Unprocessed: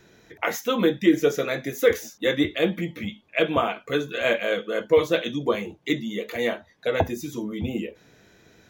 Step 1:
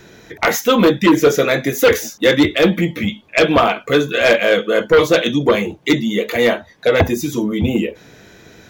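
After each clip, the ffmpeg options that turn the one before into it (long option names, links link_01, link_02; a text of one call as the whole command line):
ffmpeg -i in.wav -af "aeval=exprs='0.531*sin(PI/2*2.51*val(0)/0.531)':channel_layout=same" out.wav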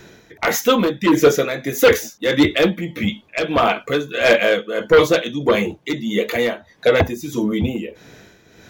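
ffmpeg -i in.wav -af "tremolo=f=1.6:d=0.65" out.wav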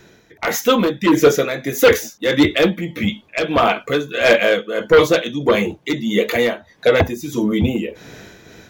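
ffmpeg -i in.wav -af "dynaudnorm=framelen=370:gausssize=3:maxgain=14dB,volume=-4dB" out.wav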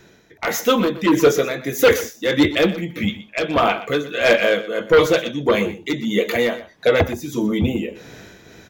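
ffmpeg -i in.wav -af "aecho=1:1:122:0.178,volume=-2dB" out.wav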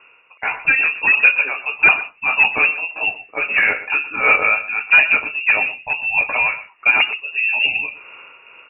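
ffmpeg -i in.wav -af "lowpass=frequency=2500:width_type=q:width=0.5098,lowpass=frequency=2500:width_type=q:width=0.6013,lowpass=frequency=2500:width_type=q:width=0.9,lowpass=frequency=2500:width_type=q:width=2.563,afreqshift=-2900,volume=1dB" out.wav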